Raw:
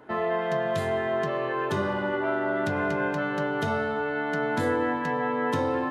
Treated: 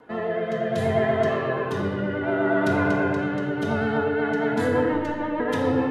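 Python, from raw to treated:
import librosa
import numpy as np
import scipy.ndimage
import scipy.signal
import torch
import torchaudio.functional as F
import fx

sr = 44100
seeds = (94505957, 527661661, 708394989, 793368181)

y = fx.rotary_switch(x, sr, hz=0.65, then_hz=6.7, switch_at_s=3.68)
y = fx.robotise(y, sr, hz=302.0, at=(4.88, 5.4))
y = fx.vibrato(y, sr, rate_hz=8.4, depth_cents=47.0)
y = fx.room_shoebox(y, sr, seeds[0], volume_m3=1300.0, walls='mixed', distance_m=1.8)
y = F.gain(torch.from_numpy(y), 1.5).numpy()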